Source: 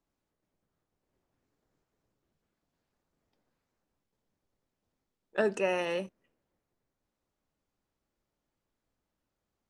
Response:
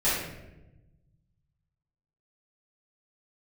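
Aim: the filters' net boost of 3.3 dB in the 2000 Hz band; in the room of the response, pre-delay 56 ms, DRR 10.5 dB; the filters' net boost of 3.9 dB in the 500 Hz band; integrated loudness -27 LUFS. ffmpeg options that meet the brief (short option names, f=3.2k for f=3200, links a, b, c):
-filter_complex "[0:a]equalizer=f=500:t=o:g=4.5,equalizer=f=2k:t=o:g=4,asplit=2[a][b];[1:a]atrim=start_sample=2205,adelay=56[c];[b][c]afir=irnorm=-1:irlink=0,volume=-23.5dB[d];[a][d]amix=inputs=2:normalize=0,volume=1dB"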